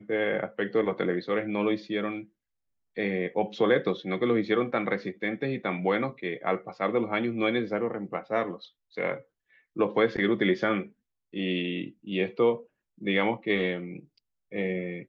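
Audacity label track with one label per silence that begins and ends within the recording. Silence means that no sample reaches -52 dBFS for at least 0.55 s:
2.260000	2.960000	silence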